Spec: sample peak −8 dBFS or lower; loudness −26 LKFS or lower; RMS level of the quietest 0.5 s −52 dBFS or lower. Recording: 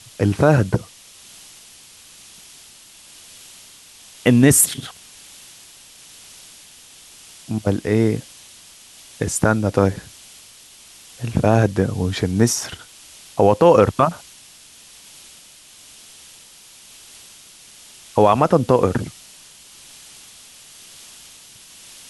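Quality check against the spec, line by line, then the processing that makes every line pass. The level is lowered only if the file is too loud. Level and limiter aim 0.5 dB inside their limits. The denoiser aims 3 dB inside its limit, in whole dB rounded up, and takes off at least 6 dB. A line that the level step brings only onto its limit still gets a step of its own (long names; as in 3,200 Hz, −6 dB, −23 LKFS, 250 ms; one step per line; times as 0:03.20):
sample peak −2.0 dBFS: out of spec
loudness −18.0 LKFS: out of spec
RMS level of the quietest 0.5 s −46 dBFS: out of spec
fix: level −8.5 dB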